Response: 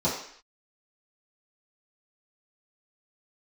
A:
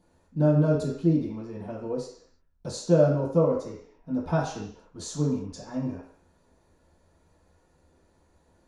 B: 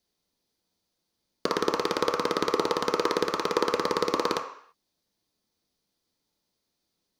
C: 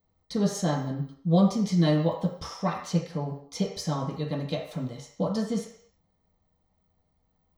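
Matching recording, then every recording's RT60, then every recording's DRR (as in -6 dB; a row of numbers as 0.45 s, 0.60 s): A; 0.60 s, 0.60 s, 0.60 s; -11.0 dB, 2.0 dB, -4.5 dB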